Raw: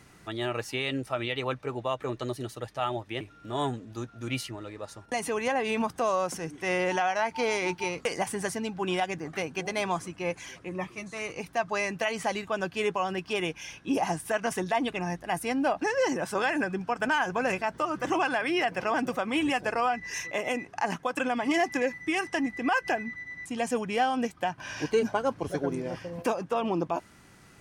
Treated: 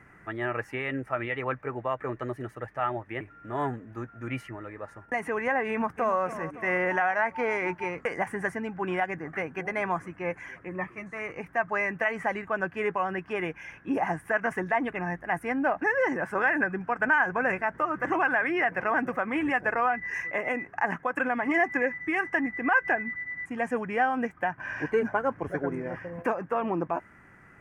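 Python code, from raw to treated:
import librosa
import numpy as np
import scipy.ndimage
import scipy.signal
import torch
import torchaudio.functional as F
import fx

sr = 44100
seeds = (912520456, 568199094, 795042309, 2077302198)

y = fx.echo_throw(x, sr, start_s=5.69, length_s=0.53, ms=280, feedback_pct=55, wet_db=-12.5)
y = fx.high_shelf_res(y, sr, hz=2700.0, db=-13.5, q=3.0)
y = y * librosa.db_to_amplitude(-1.0)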